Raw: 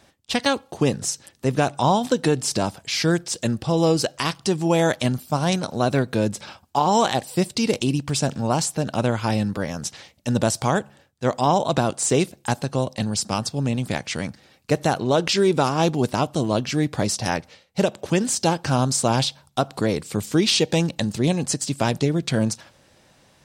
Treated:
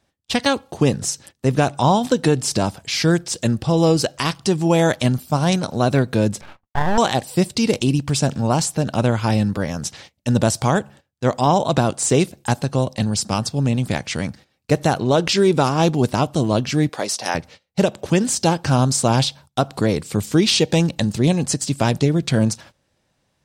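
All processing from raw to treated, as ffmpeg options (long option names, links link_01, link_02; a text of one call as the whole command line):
ffmpeg -i in.wav -filter_complex "[0:a]asettb=1/sr,asplit=3[link_01][link_02][link_03];[link_01]atrim=end=6.414[link_04];[link_02]atrim=start=6.41:end=6.98,asetpts=PTS-STARTPTS,afade=type=in:duration=0.004:curve=qsin,afade=type=out:start_time=0.566:duration=0.004:curve=qsin,lowpass=frequency=2600:width=0.5412,lowpass=frequency=2600:width=1.3066,agate=range=-33dB:threshold=-54dB:ratio=3:release=100:detection=peak,aeval=exprs='max(val(0),0)':channel_layout=same[link_05];[link_03]atrim=start=6.976[link_06];[link_04][link_05]acrossfade=duration=0.004:curve1=hsin:curve2=qsin[link_07];[link_07][link_06]acrossfade=duration=0.004:curve1=qsin:curve2=hsin,asettb=1/sr,asplit=3[link_08][link_09][link_10];[link_08]atrim=end=16.894[link_11];[link_09]atrim=start=16.89:end=17.35,asetpts=PTS-STARTPTS,afade=type=in:duration=0.004:curve=qsin,afade=type=out:start_time=0.456:duration=0.004:curve=qsin,highpass=440,bandreject=frequency=7500:width=21[link_12];[link_10]atrim=start=17.346[link_13];[link_11][link_12]acrossfade=duration=0.004:curve1=hsin:curve2=qsin[link_14];[link_14][link_13]acrossfade=duration=0.004:curve1=qsin:curve2=hsin,agate=range=-15dB:threshold=-44dB:ratio=16:detection=peak,lowshelf=frequency=150:gain=5.5,volume=2dB" out.wav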